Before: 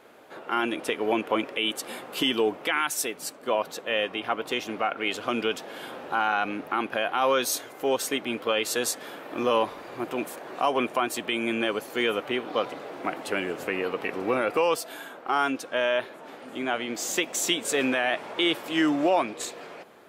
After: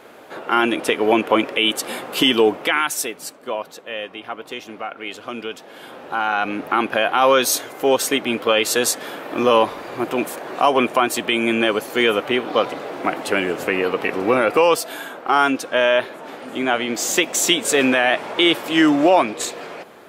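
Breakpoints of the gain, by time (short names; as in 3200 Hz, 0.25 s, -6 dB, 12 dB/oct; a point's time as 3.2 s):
2.51 s +9 dB
3.8 s -2.5 dB
5.59 s -2.5 dB
6.73 s +8.5 dB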